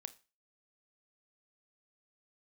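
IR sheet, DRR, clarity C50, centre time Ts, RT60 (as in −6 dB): 12.5 dB, 18.5 dB, 3 ms, 0.30 s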